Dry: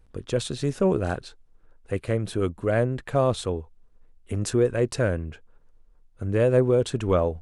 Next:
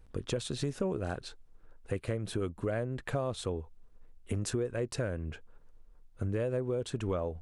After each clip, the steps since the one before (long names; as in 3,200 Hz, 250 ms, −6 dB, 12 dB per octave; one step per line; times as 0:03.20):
downward compressor 6 to 1, threshold −30 dBFS, peak gain reduction 15 dB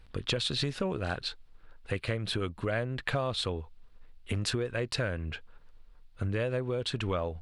drawn EQ curve 130 Hz 0 dB, 390 Hz −3 dB, 2,800 Hz +9 dB, 4,400 Hz +10 dB, 6,300 Hz −2 dB
level +2 dB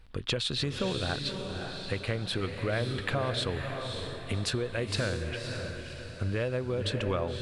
feedback delay with all-pass diffusion 563 ms, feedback 44%, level −5 dB